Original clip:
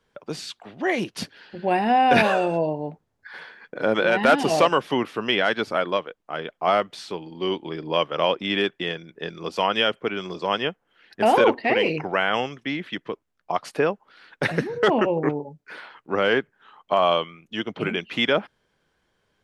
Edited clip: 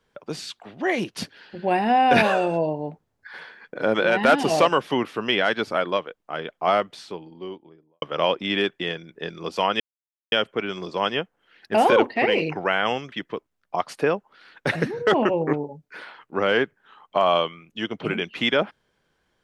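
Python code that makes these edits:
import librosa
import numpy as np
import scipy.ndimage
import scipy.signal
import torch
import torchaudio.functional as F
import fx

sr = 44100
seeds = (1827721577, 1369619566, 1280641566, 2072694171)

y = fx.studio_fade_out(x, sr, start_s=6.68, length_s=1.34)
y = fx.edit(y, sr, fx.insert_silence(at_s=9.8, length_s=0.52),
    fx.cut(start_s=12.6, length_s=0.28), tone=tone)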